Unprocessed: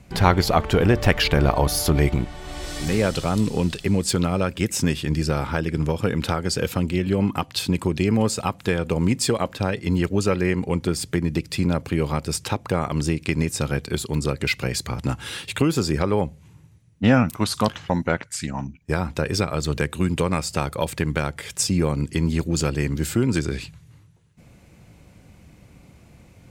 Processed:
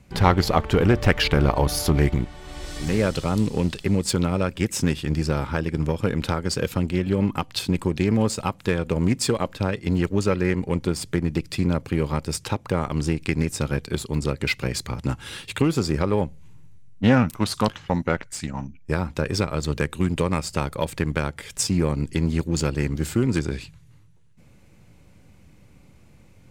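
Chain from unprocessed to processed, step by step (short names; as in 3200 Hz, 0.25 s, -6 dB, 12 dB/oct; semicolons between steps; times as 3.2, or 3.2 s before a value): notch 690 Hz, Q 12; in parallel at -5 dB: backlash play -20 dBFS; on the sum: Doppler distortion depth 0.15 ms; gain -4 dB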